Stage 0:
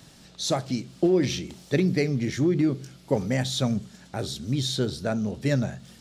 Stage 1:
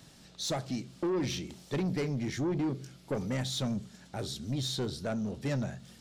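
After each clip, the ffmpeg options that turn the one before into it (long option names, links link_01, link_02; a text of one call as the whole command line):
ffmpeg -i in.wav -af "asoftclip=type=tanh:threshold=-22dB,volume=-4.5dB" out.wav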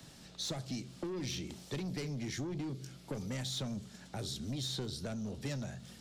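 ffmpeg -i in.wav -filter_complex "[0:a]acrossover=split=120|260|2900[link_01][link_02][link_03][link_04];[link_01]acompressor=threshold=-46dB:ratio=4[link_05];[link_02]acompressor=threshold=-46dB:ratio=4[link_06];[link_03]acompressor=threshold=-45dB:ratio=4[link_07];[link_04]acompressor=threshold=-41dB:ratio=4[link_08];[link_05][link_06][link_07][link_08]amix=inputs=4:normalize=0,volume=1dB" out.wav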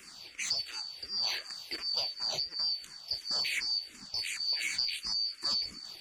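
ffmpeg -i in.wav -filter_complex "[0:a]afftfilt=real='real(if(lt(b,272),68*(eq(floor(b/68),0)*1+eq(floor(b/68),1)*2+eq(floor(b/68),2)*3+eq(floor(b/68),3)*0)+mod(b,68),b),0)':imag='imag(if(lt(b,272),68*(eq(floor(b/68),0)*1+eq(floor(b/68),1)*2+eq(floor(b/68),2)*3+eq(floor(b/68),3)*0)+mod(b,68),b),0)':win_size=2048:overlap=0.75,asplit=2[link_01][link_02];[link_02]afreqshift=-2.8[link_03];[link_01][link_03]amix=inputs=2:normalize=1,volume=7.5dB" out.wav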